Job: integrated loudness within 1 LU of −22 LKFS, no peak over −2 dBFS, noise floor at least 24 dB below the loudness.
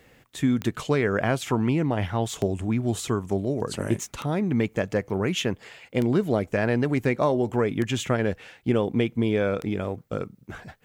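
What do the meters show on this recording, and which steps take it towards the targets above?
number of clicks 6; integrated loudness −26.0 LKFS; sample peak −11.0 dBFS; target loudness −22.0 LKFS
→ click removal
level +4 dB

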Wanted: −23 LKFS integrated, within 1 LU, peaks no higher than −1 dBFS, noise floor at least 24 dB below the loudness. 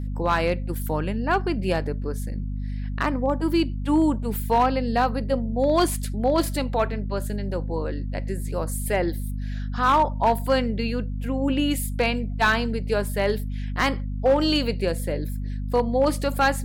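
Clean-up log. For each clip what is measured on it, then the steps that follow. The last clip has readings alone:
share of clipped samples 0.4%; peaks flattened at −12.5 dBFS; mains hum 50 Hz; hum harmonics up to 250 Hz; level of the hum −26 dBFS; integrated loudness −24.5 LKFS; sample peak −12.5 dBFS; target loudness −23.0 LKFS
→ clipped peaks rebuilt −12.5 dBFS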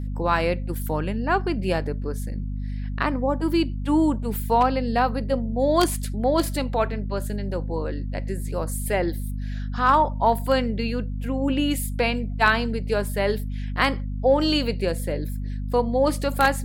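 share of clipped samples 0.0%; mains hum 50 Hz; hum harmonics up to 250 Hz; level of the hum −26 dBFS
→ hum removal 50 Hz, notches 5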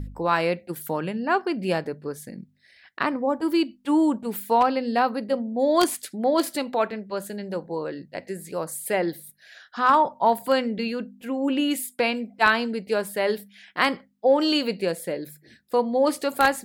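mains hum none found; integrated loudness −24.5 LKFS; sample peak −3.5 dBFS; target loudness −23.0 LKFS
→ level +1.5 dB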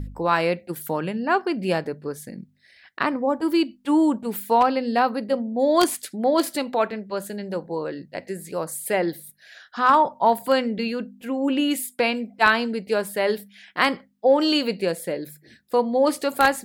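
integrated loudness −23.0 LKFS; sample peak −2.0 dBFS; background noise floor −57 dBFS

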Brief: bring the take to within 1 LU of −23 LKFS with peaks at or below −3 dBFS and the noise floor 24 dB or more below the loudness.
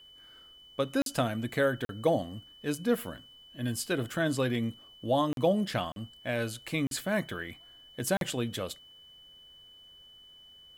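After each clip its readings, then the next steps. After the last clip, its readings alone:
number of dropouts 6; longest dropout 42 ms; interfering tone 3,000 Hz; level of the tone −52 dBFS; integrated loudness −31.5 LKFS; sample peak −13.5 dBFS; target loudness −23.0 LKFS
→ repair the gap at 0:01.02/0:01.85/0:05.33/0:05.92/0:06.87/0:08.17, 42 ms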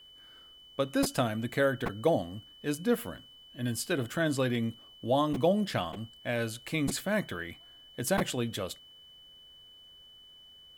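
number of dropouts 0; interfering tone 3,000 Hz; level of the tone −52 dBFS
→ notch filter 3,000 Hz, Q 30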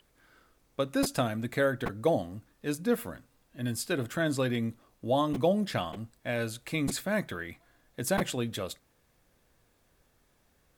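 interfering tone none found; integrated loudness −31.5 LKFS; sample peak −13.5 dBFS; target loudness −23.0 LKFS
→ level +8.5 dB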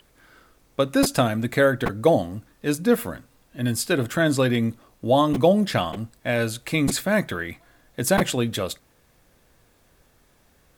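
integrated loudness −23.0 LKFS; sample peak −5.0 dBFS; background noise floor −61 dBFS

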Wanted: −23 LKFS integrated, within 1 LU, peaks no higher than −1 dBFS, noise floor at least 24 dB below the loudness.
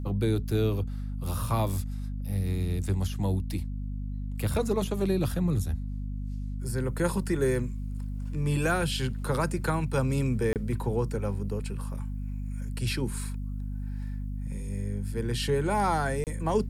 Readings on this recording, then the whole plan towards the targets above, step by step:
number of dropouts 2; longest dropout 28 ms; mains hum 50 Hz; hum harmonics up to 250 Hz; level of the hum −31 dBFS; integrated loudness −30.5 LKFS; sample peak −14.0 dBFS; target loudness −23.0 LKFS
→ repair the gap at 0:10.53/0:16.24, 28 ms
hum removal 50 Hz, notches 5
level +7.5 dB

